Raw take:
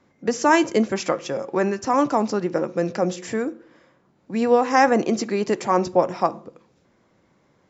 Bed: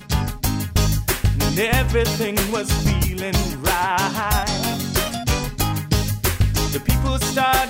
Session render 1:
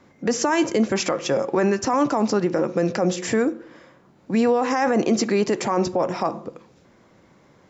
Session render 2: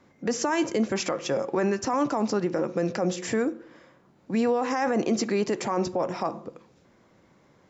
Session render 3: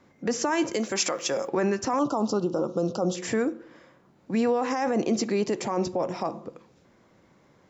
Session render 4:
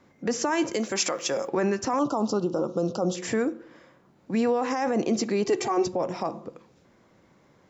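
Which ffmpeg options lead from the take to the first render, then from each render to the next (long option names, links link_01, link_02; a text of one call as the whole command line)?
ffmpeg -i in.wav -filter_complex "[0:a]asplit=2[link_01][link_02];[link_02]acompressor=threshold=-25dB:ratio=6,volume=2dB[link_03];[link_01][link_03]amix=inputs=2:normalize=0,alimiter=limit=-11.5dB:level=0:latency=1:release=16" out.wav
ffmpeg -i in.wav -af "volume=-5dB" out.wav
ffmpeg -i in.wav -filter_complex "[0:a]asettb=1/sr,asplit=3[link_01][link_02][link_03];[link_01]atrim=end=0.734[link_04];[link_02]atrim=start=0.73:end=1.48,asetpts=PTS-STARTPTS,afade=type=in:duration=0.004:curve=qsin,afade=type=out:start_time=0.746:duration=0.004:curve=qsin,aemphasis=mode=production:type=bsi[link_05];[link_03]atrim=start=1.476[link_06];[link_04][link_05]acrossfade=duration=0.004:curve1=hsin:curve2=qsin[link_07];[link_07][link_06]acrossfade=duration=0.004:curve1=qsin:curve2=hsin,asettb=1/sr,asplit=3[link_08][link_09][link_10];[link_08]atrim=end=1.994[link_11];[link_09]atrim=start=1.99:end=3.15,asetpts=PTS-STARTPTS,afade=type=in:duration=0.004:curve=qsin,afade=type=out:start_time=1.156:duration=0.004:curve=qsin,asuperstop=centerf=2000:order=8:qfactor=1.3[link_12];[link_10]atrim=start=3.146[link_13];[link_11][link_12]acrossfade=duration=0.004:curve1=hsin:curve2=qsin[link_14];[link_14][link_13]acrossfade=duration=0.004:curve1=qsin:curve2=hsin,asettb=1/sr,asplit=3[link_15][link_16][link_17];[link_15]atrim=end=4.734[link_18];[link_16]atrim=start=4.73:end=6.42,asetpts=PTS-STARTPTS,afade=type=in:duration=0.004:curve=qsin,afade=type=out:start_time=1.686:duration=0.004:curve=qsin,equalizer=frequency=1500:width=1.4:gain=-4.5[link_19];[link_17]atrim=start=6.416[link_20];[link_18][link_19]acrossfade=duration=0.004:curve1=hsin:curve2=qsin[link_21];[link_21][link_20]acrossfade=duration=0.004:curve1=qsin:curve2=hsin" out.wav
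ffmpeg -i in.wav -filter_complex "[0:a]asettb=1/sr,asplit=3[link_01][link_02][link_03];[link_01]atrim=end=5.454[link_04];[link_02]atrim=start=5.45:end=5.87,asetpts=PTS-STARTPTS,afade=type=in:duration=0.004:curve=qsin,afade=type=out:start_time=0.416:duration=0.004:curve=qsin,aecho=1:1:2.6:0.88,atrim=end_sample=18522[link_05];[link_03]atrim=start=5.866[link_06];[link_04][link_05]acrossfade=duration=0.004:curve1=hsin:curve2=qsin[link_07];[link_07][link_06]acrossfade=duration=0.004:curve1=qsin:curve2=hsin" out.wav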